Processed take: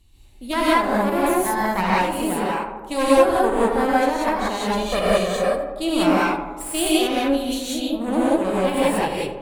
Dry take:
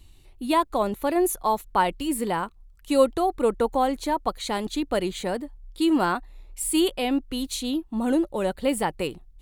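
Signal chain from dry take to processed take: added harmonics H 4 -9 dB, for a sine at -7 dBFS; 4.61–5.44 comb 1.7 ms, depth 99%; on a send: tape echo 82 ms, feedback 76%, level -7 dB, low-pass 1800 Hz; on the sum: non-linear reverb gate 0.21 s rising, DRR -7.5 dB; gain -6 dB

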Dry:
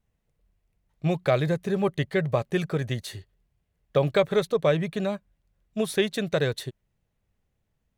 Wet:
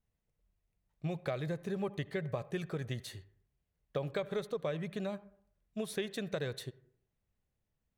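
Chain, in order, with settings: compressor 4:1, threshold -24 dBFS, peak gain reduction 7.5 dB; reverb RT60 0.60 s, pre-delay 58 ms, DRR 18.5 dB; gain -8.5 dB

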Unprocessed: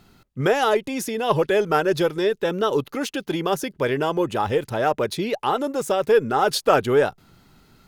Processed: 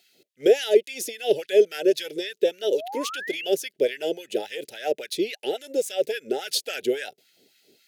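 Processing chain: LFO high-pass sine 3.6 Hz 410–1600 Hz; Butterworth band-stop 1100 Hz, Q 0.54; painted sound rise, 2.72–3.48, 510–3100 Hz -35 dBFS

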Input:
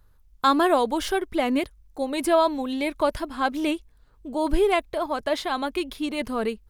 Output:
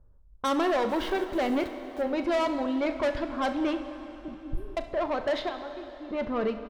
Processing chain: 4.28–4.77 inverse Chebyshev band-stop 760–3600 Hz, stop band 70 dB; 5.49–6.11 pre-emphasis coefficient 0.8; low-pass opened by the level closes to 670 Hz, open at -17 dBFS; bell 10000 Hz -14 dB 1.3 oct; 0.89–2.02 sample gate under -43 dBFS; small resonant body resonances 570/3800 Hz, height 6 dB; soft clip -23 dBFS, distortion -8 dB; early reflections 38 ms -14 dB, 69 ms -18 dB; plate-style reverb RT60 3.9 s, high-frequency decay 0.85×, DRR 9 dB

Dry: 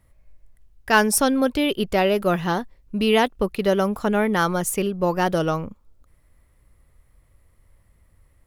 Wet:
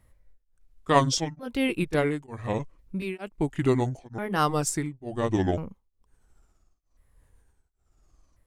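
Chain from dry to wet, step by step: repeated pitch sweeps -10.5 st, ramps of 1.394 s; beating tremolo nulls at 1.1 Hz; gain -1.5 dB

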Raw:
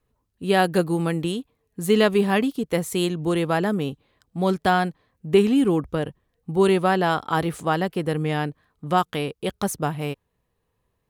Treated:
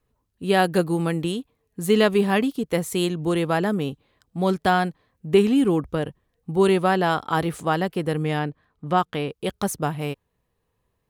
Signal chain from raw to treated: 8.39–9.31 high shelf 6200 Hz -12 dB

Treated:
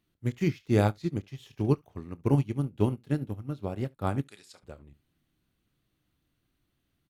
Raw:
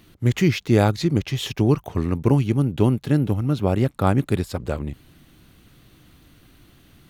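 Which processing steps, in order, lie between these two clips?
4.23–4.63 weighting filter ITU-R 468; early reflections 29 ms -12 dB, 70 ms -16.5 dB; upward expander 2.5:1, over -26 dBFS; gain -5 dB

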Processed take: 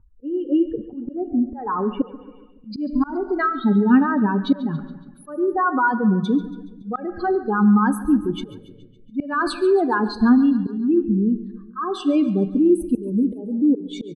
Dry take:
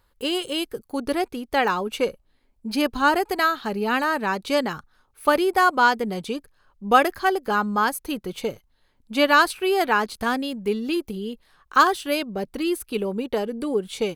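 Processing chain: spectral contrast raised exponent 2.8; on a send at -12 dB: reverb RT60 0.90 s, pre-delay 7 ms; on the sum: low-pass sweep 1300 Hz -> 7000 Hz, 2.12–2.78; auto swell 0.334 s; resonant low shelf 390 Hz +10.5 dB, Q 1.5; feedback echo 0.14 s, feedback 56%, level -17 dB

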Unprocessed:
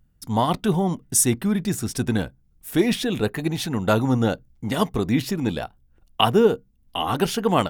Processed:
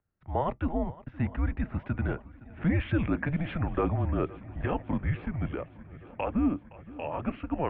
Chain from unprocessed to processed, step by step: Doppler pass-by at 3, 19 m/s, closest 23 m; limiter -18.5 dBFS, peak gain reduction 11 dB; air absorption 280 m; swung echo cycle 0.86 s, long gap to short 1.5:1, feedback 59%, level -20 dB; mistuned SSB -150 Hz 230–2700 Hz; gain +3 dB

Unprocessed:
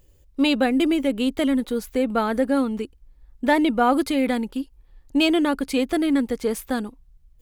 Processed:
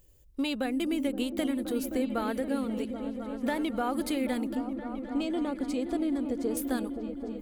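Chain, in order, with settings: high shelf 6800 Hz +8 dB; compressor, threshold -21 dBFS, peak gain reduction 8.5 dB; 4.55–6.57 EQ curve 710 Hz 0 dB, 1800 Hz -9 dB, 7900 Hz -6 dB, 11000 Hz -18 dB; repeats that get brighter 0.261 s, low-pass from 200 Hz, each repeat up 1 oct, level -3 dB; gain -6 dB

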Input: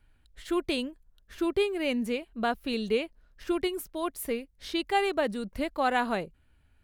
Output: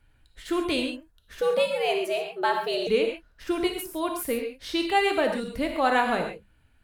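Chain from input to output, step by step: notches 50/100/150/200 Hz; non-linear reverb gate 0.16 s flat, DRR 2.5 dB; 1.41–2.87 frequency shift +150 Hz; gain +2.5 dB; Opus 128 kbps 48000 Hz

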